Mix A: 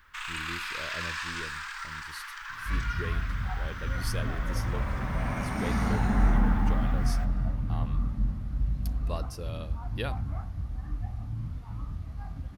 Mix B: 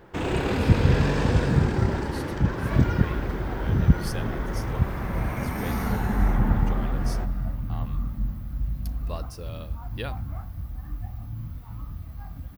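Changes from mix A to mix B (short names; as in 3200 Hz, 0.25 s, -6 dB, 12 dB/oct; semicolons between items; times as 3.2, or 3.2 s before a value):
first sound: remove steep high-pass 1100 Hz 48 dB/oct; second sound: remove LPF 9300 Hz 24 dB/oct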